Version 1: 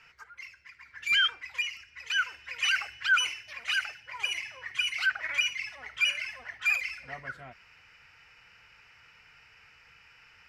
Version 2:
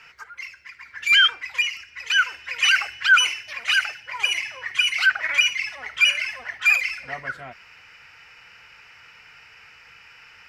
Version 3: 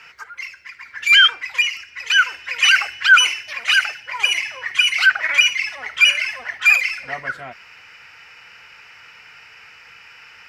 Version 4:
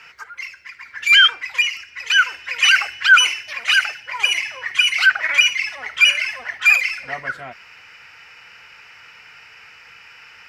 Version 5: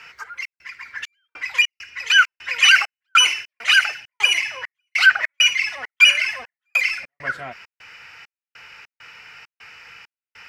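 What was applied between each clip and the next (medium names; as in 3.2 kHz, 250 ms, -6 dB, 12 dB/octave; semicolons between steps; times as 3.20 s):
bass shelf 170 Hz -7 dB; trim +9 dB
bass shelf 110 Hz -7.5 dB; trim +4.5 dB
no audible change
trance gate "xxx.xxx..xx." 100 bpm -60 dB; trim +1 dB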